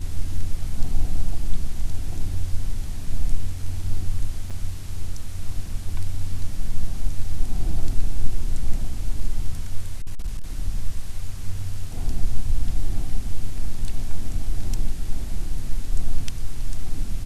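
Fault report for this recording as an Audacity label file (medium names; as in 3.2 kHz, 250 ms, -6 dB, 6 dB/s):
4.500000	4.510000	dropout 6.4 ms
10.020000	10.440000	clipped -20.5 dBFS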